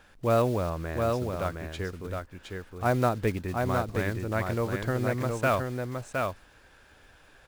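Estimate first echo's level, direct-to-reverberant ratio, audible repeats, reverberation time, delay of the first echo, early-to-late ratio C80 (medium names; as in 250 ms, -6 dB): -4.0 dB, no reverb, 1, no reverb, 715 ms, no reverb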